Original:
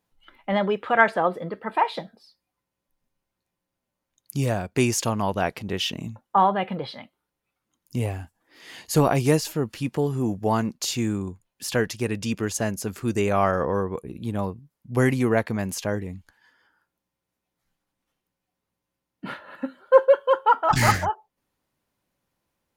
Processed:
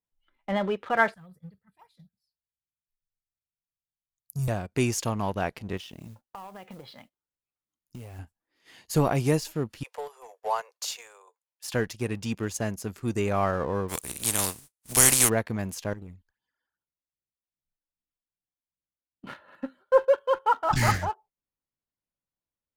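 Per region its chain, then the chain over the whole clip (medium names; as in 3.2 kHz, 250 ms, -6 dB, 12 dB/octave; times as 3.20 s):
1.14–4.48 s: FFT filter 160 Hz 0 dB, 290 Hz -25 dB, 800 Hz -26 dB, 1.5 kHz -18 dB, 3 kHz -18 dB, 4.4 kHz -9 dB, 7.4 kHz -3 dB, 13 kHz +4 dB + LFO notch saw up 4 Hz 310–4100 Hz
5.77–8.19 s: compression, threshold -33 dBFS + modulation noise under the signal 20 dB
9.83–11.74 s: steep high-pass 460 Hz 72 dB/octave + peaking EQ 960 Hz +4 dB 0.42 oct
13.88–15.28 s: spectral contrast reduction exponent 0.35 + peaking EQ 9.1 kHz +14 dB 1.2 oct
15.93–19.27 s: compression 2.5:1, threshold -35 dBFS + phase shifter stages 12, 2.5 Hz, lowest notch 120–2000 Hz
whole clip: gate -46 dBFS, range -10 dB; bass shelf 77 Hz +8.5 dB; waveshaping leveller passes 1; trim -8.5 dB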